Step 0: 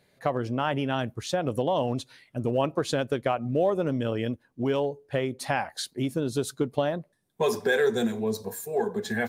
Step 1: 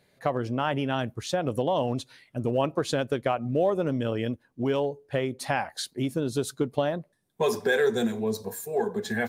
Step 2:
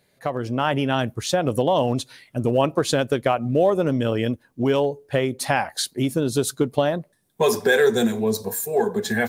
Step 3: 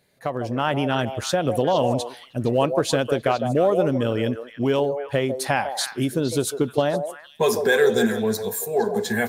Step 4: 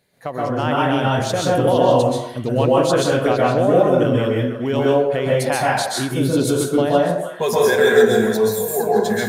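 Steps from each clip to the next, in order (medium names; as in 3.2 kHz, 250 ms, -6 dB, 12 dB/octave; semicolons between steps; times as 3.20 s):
no audible change
treble shelf 6.9 kHz +6.5 dB; level rider gain up to 6 dB
repeats whose band climbs or falls 154 ms, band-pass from 580 Hz, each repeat 1.4 oct, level -5 dB; trim -1 dB
plate-style reverb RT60 0.57 s, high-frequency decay 0.6×, pre-delay 115 ms, DRR -4.5 dB; trim -1 dB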